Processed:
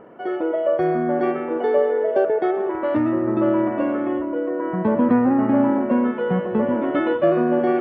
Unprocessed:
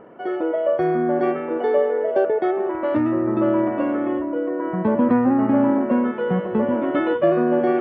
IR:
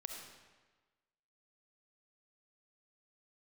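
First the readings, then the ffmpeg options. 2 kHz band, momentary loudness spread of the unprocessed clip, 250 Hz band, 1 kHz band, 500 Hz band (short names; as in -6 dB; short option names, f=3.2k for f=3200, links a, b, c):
0.0 dB, 6 LU, 0.0 dB, 0.0 dB, 0.0 dB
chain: -filter_complex "[0:a]asplit=2[a][b];[1:a]atrim=start_sample=2205,adelay=119[c];[b][c]afir=irnorm=-1:irlink=0,volume=-13dB[d];[a][d]amix=inputs=2:normalize=0"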